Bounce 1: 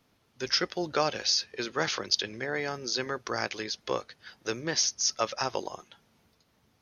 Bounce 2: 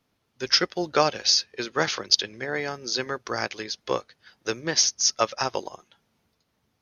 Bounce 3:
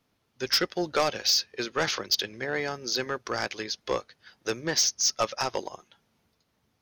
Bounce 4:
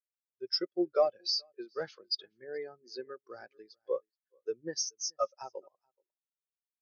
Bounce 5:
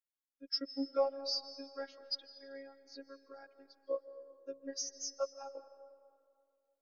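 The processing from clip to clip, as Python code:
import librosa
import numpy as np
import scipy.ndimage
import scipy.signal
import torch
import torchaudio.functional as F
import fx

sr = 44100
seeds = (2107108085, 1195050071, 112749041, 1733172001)

y1 = fx.upward_expand(x, sr, threshold_db=-46.0, expansion=1.5)
y1 = y1 * 10.0 ** (7.5 / 20.0)
y2 = 10.0 ** (-17.0 / 20.0) * np.tanh(y1 / 10.0 ** (-17.0 / 20.0))
y3 = y2 + 10.0 ** (-14.0 / 20.0) * np.pad(y2, (int(427 * sr / 1000.0), 0))[:len(y2)]
y3 = fx.spectral_expand(y3, sr, expansion=2.5)
y4 = fx.robotise(y3, sr, hz=274.0)
y4 = fx.rev_freeverb(y4, sr, rt60_s=2.3, hf_ratio=0.6, predelay_ms=110, drr_db=12.5)
y4 = y4 * 10.0 ** (-3.0 / 20.0)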